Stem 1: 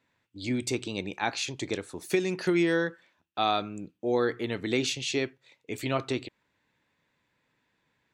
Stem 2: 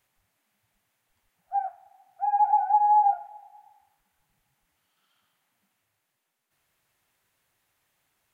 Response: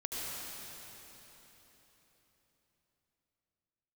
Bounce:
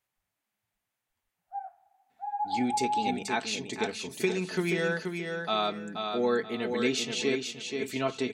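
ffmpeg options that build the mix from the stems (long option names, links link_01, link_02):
-filter_complex "[0:a]aecho=1:1:4.6:0.64,adelay=2100,volume=-2.5dB,asplit=2[link_01][link_02];[link_02]volume=-5.5dB[link_03];[1:a]volume=-10dB[link_04];[link_03]aecho=0:1:479|958|1437|1916:1|0.27|0.0729|0.0197[link_05];[link_01][link_04][link_05]amix=inputs=3:normalize=0,bandreject=frequency=50:width_type=h:width=6,bandreject=frequency=100:width_type=h:width=6,bandreject=frequency=150:width_type=h:width=6,bandreject=frequency=200:width_type=h:width=6"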